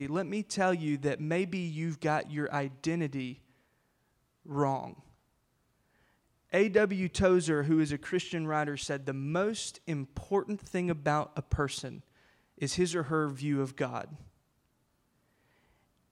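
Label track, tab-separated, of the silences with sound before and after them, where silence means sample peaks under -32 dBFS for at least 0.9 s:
3.290000	4.520000	silence
4.860000	6.540000	silence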